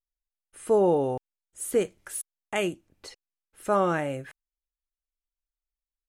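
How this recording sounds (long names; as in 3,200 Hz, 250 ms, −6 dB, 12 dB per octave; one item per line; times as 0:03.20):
background noise floor −94 dBFS
spectral slope −5.0 dB per octave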